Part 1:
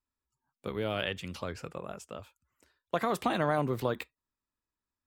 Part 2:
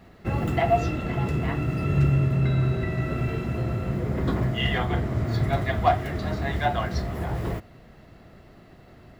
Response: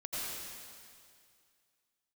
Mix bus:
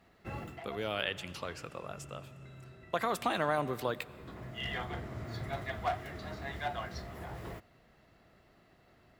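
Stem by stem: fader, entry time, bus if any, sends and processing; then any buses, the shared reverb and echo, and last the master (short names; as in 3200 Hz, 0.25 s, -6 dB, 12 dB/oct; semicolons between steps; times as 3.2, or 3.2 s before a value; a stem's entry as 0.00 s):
0.0 dB, 0.00 s, send -20 dB, dry
-9.0 dB, 0.00 s, no send, one-sided clip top -18 dBFS; auto duck -13 dB, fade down 0.25 s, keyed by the first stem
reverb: on, RT60 2.2 s, pre-delay 78 ms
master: low shelf 470 Hz -8 dB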